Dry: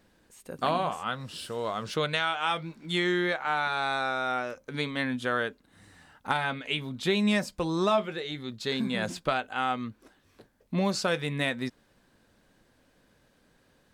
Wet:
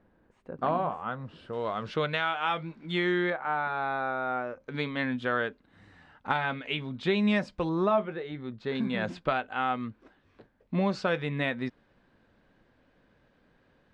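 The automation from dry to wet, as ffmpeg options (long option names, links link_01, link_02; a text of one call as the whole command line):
ffmpeg -i in.wav -af "asetnsamples=nb_out_samples=441:pad=0,asendcmd='1.53 lowpass f 2900;3.3 lowpass f 1500;4.6 lowpass f 3100;7.69 lowpass f 1700;8.75 lowpass f 2800',lowpass=1400" out.wav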